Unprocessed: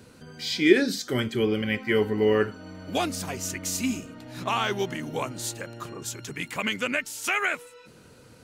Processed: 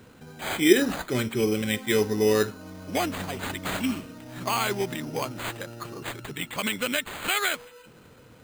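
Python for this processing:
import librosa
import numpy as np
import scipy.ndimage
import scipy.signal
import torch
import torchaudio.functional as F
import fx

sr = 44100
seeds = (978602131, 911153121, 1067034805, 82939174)

y = np.repeat(x[::8], 8)[:len(x)]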